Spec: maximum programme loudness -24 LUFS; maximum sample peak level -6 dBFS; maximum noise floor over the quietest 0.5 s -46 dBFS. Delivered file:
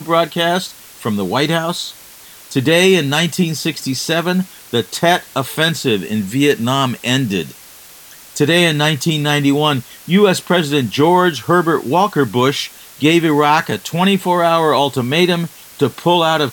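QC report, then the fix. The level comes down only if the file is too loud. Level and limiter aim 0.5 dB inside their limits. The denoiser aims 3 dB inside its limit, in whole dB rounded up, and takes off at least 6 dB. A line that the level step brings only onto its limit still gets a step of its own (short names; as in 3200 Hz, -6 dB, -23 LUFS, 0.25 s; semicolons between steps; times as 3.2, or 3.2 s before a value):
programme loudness -15.0 LUFS: fail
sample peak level -1.5 dBFS: fail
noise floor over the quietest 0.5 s -40 dBFS: fail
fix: gain -9.5 dB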